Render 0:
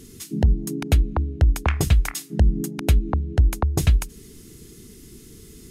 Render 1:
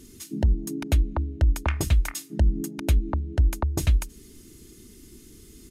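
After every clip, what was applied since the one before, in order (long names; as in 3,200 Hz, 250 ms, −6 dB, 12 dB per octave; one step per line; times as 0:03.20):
comb filter 3.3 ms, depth 38%
level −4.5 dB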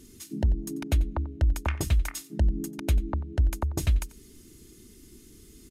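single-tap delay 91 ms −19.5 dB
level −3 dB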